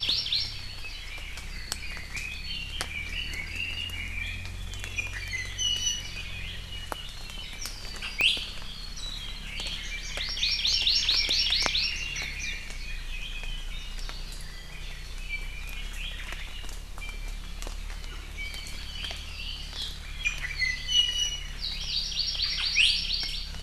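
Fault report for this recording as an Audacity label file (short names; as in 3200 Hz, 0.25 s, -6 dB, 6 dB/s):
8.210000	8.210000	pop -11 dBFS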